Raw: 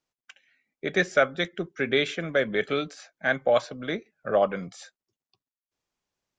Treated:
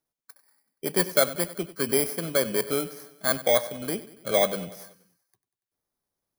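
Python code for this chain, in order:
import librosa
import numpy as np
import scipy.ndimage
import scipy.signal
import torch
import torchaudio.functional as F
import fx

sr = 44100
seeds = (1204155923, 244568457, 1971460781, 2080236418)

p1 = fx.bit_reversed(x, sr, seeds[0], block=16)
y = p1 + fx.echo_feedback(p1, sr, ms=95, feedback_pct=57, wet_db=-16.5, dry=0)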